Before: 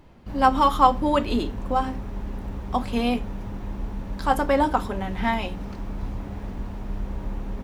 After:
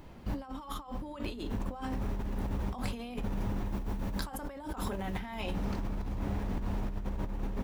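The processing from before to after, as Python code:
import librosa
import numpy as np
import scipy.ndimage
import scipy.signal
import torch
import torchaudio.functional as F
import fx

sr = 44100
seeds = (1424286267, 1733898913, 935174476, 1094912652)

y = fx.high_shelf(x, sr, hz=8600.0, db=fx.steps((0.0, 6.5), (3.67, 11.5), (5.4, 3.5)))
y = fx.over_compress(y, sr, threshold_db=-32.0, ratio=-1.0)
y = y * 10.0 ** (-4.5 / 20.0)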